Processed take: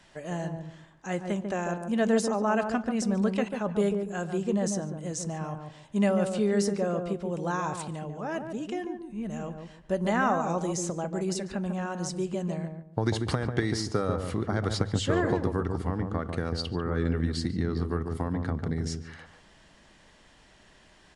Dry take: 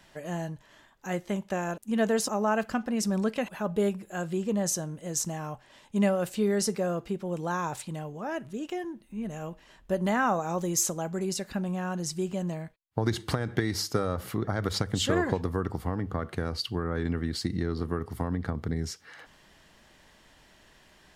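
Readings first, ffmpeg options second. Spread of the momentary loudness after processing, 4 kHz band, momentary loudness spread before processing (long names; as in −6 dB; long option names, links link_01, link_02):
10 LU, −2.5 dB, 10 LU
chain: -filter_complex "[0:a]acrossover=split=1800[link_01][link_02];[link_02]alimiter=limit=-24dB:level=0:latency=1:release=342[link_03];[link_01][link_03]amix=inputs=2:normalize=0,asplit=2[link_04][link_05];[link_05]adelay=144,lowpass=frequency=810:poles=1,volume=-4dB,asplit=2[link_06][link_07];[link_07]adelay=144,lowpass=frequency=810:poles=1,volume=0.3,asplit=2[link_08][link_09];[link_09]adelay=144,lowpass=frequency=810:poles=1,volume=0.3,asplit=2[link_10][link_11];[link_11]adelay=144,lowpass=frequency=810:poles=1,volume=0.3[link_12];[link_04][link_06][link_08][link_10][link_12]amix=inputs=5:normalize=0,aresample=22050,aresample=44100"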